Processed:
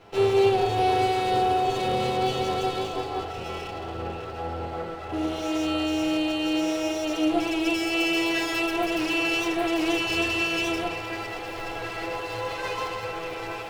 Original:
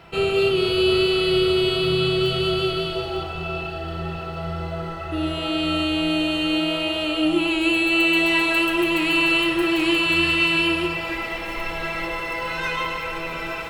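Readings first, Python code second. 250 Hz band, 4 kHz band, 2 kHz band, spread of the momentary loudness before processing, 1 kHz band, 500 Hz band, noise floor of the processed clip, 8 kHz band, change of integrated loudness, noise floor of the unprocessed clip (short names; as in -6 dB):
-4.0 dB, -8.0 dB, -7.5 dB, 11 LU, +2.5 dB, -3.5 dB, -35 dBFS, +1.0 dB, -5.0 dB, -31 dBFS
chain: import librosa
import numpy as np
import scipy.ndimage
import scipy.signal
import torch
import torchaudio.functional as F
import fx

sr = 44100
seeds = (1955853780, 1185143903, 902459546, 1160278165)

y = fx.lower_of_two(x, sr, delay_ms=9.7)
y = fx.peak_eq(y, sr, hz=110.0, db=14.5, octaves=0.21)
y = fx.small_body(y, sr, hz=(450.0, 730.0), ring_ms=20, db=11)
y = y * 10.0 ** (-6.5 / 20.0)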